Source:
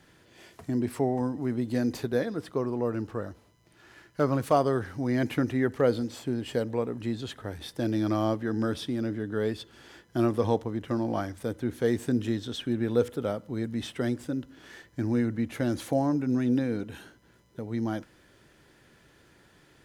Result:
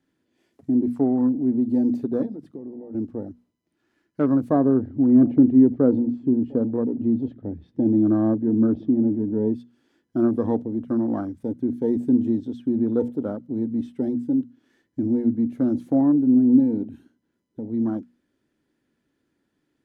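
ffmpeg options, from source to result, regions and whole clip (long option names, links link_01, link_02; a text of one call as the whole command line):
ffmpeg -i in.wav -filter_complex "[0:a]asettb=1/sr,asplit=3[link_01][link_02][link_03];[link_01]atrim=end=2.264[link_04];[link_02]atrim=start=2.26:end=2.95,asetpts=PTS-STARTPTS,afade=type=in:duration=0.004:curve=qsin,afade=type=out:start_time=0.686:duration=0.004:curve=qsin,highpass=44,bandreject=frequency=50:width_type=h:width=6,bandreject=frequency=100:width_type=h:width=6,bandreject=frequency=150:width_type=h:width=6,acompressor=threshold=-35dB:ratio=16:attack=3.2:release=140:knee=1:detection=peak[link_05];[link_03]atrim=start=2.946[link_06];[link_04][link_05]acrossfade=duration=0.004:curve1=hsin:curve2=qsin[link_07];[link_07][link_06]acrossfade=duration=0.004:curve1=qsin:curve2=hsin,asettb=1/sr,asplit=3[link_08][link_09][link_10];[link_08]atrim=end=4.504[link_11];[link_09]atrim=start=4.5:end=9.54,asetpts=PTS-STARTPTS,afade=type=in:duration=0.004:curve=qsin,afade=type=out:start_time=5.036:duration=0.004:curve=qsin,lowpass=3700,tiltshelf=frequency=680:gain=4.5,aecho=1:1:697:0.0631,atrim=end_sample=222264[link_12];[link_10]atrim=start=9.536[link_13];[link_11][link_12]acrossfade=duration=0.004:curve1=hsin:curve2=qsin[link_14];[link_14][link_13]acrossfade=duration=0.004:curve1=qsin:curve2=hsin,asettb=1/sr,asplit=3[link_15][link_16][link_17];[link_15]atrim=end=16.014[link_18];[link_16]atrim=start=16.01:end=16.6,asetpts=PTS-STARTPTS,afade=type=in:duration=0.004:curve=qsin,afade=type=out:start_time=0.586:duration=0.004:curve=qsin,lowpass=frequency=1500:width=0.5412,lowpass=frequency=1500:width=1.3066,aeval=exprs='val(0)*gte(abs(val(0)),0.00473)':channel_layout=same[link_19];[link_17]atrim=start=16.596[link_20];[link_18][link_19]acrossfade=duration=0.004:curve1=hsin:curve2=qsin[link_21];[link_21][link_20]acrossfade=duration=0.004:curve1=qsin:curve2=hsin,afwtdn=0.02,equalizer=frequency=260:width_type=o:width=0.87:gain=14.5,bandreject=frequency=60:width_type=h:width=6,bandreject=frequency=120:width_type=h:width=6,bandreject=frequency=180:width_type=h:width=6,bandreject=frequency=240:width_type=h:width=6,volume=-3dB" out.wav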